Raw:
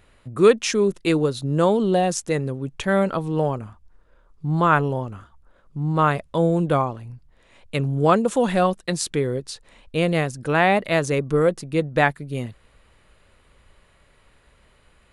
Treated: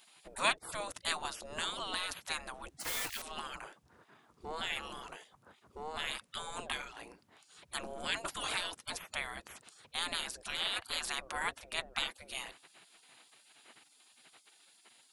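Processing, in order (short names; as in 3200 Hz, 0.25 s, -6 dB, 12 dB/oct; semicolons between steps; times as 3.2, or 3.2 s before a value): 2.8–3.23 block floating point 5-bit; spectral gate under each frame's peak -25 dB weak; in parallel at +1 dB: compressor, threshold -48 dBFS, peak gain reduction 21 dB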